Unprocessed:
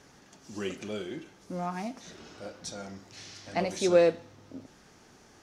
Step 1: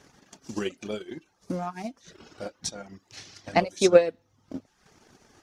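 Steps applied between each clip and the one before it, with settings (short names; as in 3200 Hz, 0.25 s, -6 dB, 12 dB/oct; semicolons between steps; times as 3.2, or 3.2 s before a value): reverb removal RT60 0.65 s; transient shaper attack +10 dB, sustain -7 dB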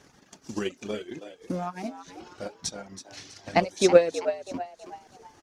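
frequency-shifting echo 0.325 s, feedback 40%, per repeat +92 Hz, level -11.5 dB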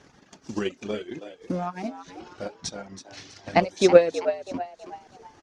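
air absorption 66 m; gain +2.5 dB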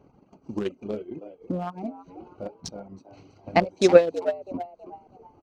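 Wiener smoothing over 25 samples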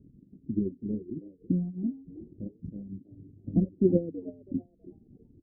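inverse Chebyshev low-pass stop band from 1000 Hz, stop band 60 dB; gain +4.5 dB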